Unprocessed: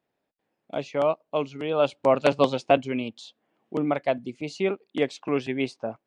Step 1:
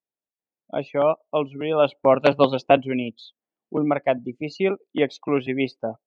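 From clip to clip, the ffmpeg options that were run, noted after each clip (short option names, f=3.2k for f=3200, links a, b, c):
-af "afftdn=nr=24:nf=-41,volume=3.5dB"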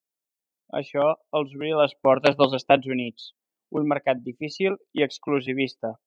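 -af "highshelf=f=3.4k:g=9.5,volume=-2dB"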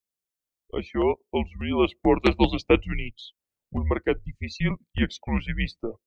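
-af "afreqshift=-220,volume=-1.5dB"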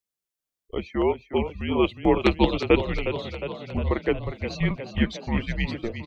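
-filter_complex "[0:a]asplit=9[a][b][c][d][e][f][g][h][i];[b]adelay=359,afreqshift=44,volume=-10dB[j];[c]adelay=718,afreqshift=88,volume=-13.9dB[k];[d]adelay=1077,afreqshift=132,volume=-17.8dB[l];[e]adelay=1436,afreqshift=176,volume=-21.6dB[m];[f]adelay=1795,afreqshift=220,volume=-25.5dB[n];[g]adelay=2154,afreqshift=264,volume=-29.4dB[o];[h]adelay=2513,afreqshift=308,volume=-33.3dB[p];[i]adelay=2872,afreqshift=352,volume=-37.1dB[q];[a][j][k][l][m][n][o][p][q]amix=inputs=9:normalize=0"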